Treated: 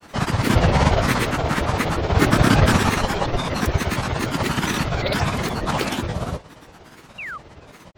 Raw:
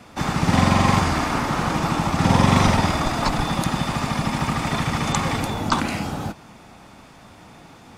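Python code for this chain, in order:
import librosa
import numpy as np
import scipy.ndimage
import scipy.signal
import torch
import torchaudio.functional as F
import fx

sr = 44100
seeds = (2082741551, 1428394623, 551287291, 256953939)

y = fx.pitch_keep_formants(x, sr, semitones=-3.5)
y = fx.granulator(y, sr, seeds[0], grain_ms=100.0, per_s=17.0, spray_ms=100.0, spread_st=12)
y = fx.spec_paint(y, sr, seeds[1], shape='fall', start_s=7.18, length_s=0.2, low_hz=1100.0, high_hz=2900.0, level_db=-35.0)
y = y * librosa.db_to_amplitude(3.5)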